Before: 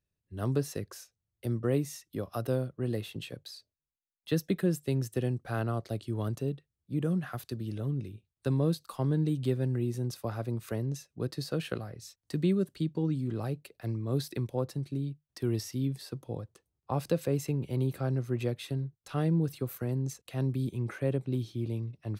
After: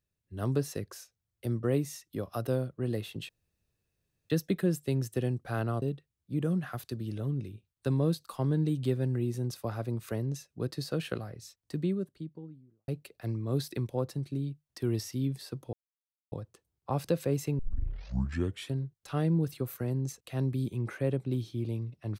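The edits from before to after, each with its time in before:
0:03.29–0:04.30: fill with room tone
0:05.82–0:06.42: remove
0:11.86–0:13.48: fade out and dull
0:16.33: splice in silence 0.59 s
0:17.60: tape start 1.14 s

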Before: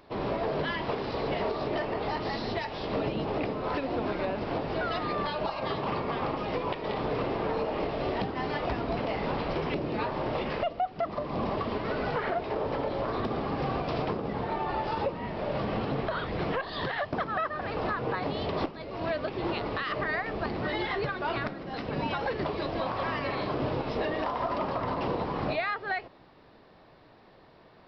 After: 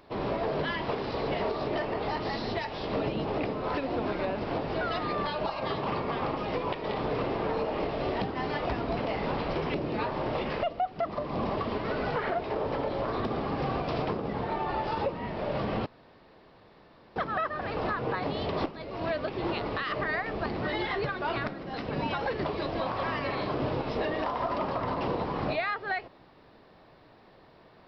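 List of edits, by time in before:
0:15.86–0:17.16: fill with room tone

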